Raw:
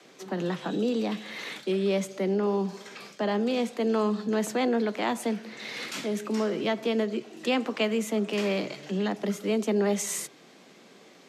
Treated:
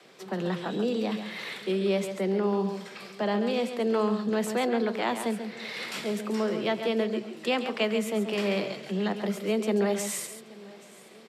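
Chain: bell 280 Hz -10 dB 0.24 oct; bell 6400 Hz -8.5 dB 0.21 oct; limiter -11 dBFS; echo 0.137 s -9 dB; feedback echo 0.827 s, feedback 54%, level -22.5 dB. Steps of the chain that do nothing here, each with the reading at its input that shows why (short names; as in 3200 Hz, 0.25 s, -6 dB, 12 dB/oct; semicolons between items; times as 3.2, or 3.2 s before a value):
limiter -11 dBFS: input peak -13.0 dBFS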